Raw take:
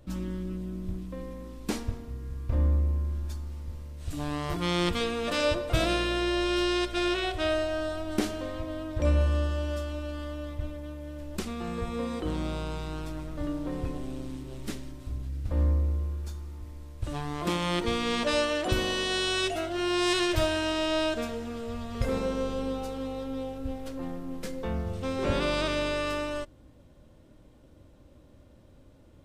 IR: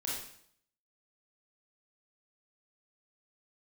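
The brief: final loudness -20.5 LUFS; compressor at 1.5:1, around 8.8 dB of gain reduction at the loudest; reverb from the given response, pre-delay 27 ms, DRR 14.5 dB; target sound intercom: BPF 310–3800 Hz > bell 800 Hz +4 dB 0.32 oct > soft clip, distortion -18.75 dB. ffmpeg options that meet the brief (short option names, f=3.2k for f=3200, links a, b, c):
-filter_complex "[0:a]acompressor=threshold=-46dB:ratio=1.5,asplit=2[a][b];[1:a]atrim=start_sample=2205,adelay=27[c];[b][c]afir=irnorm=-1:irlink=0,volume=-17dB[d];[a][d]amix=inputs=2:normalize=0,highpass=310,lowpass=3.8k,equalizer=f=800:t=o:w=0.32:g=4,asoftclip=threshold=-28.5dB,volume=20.5dB"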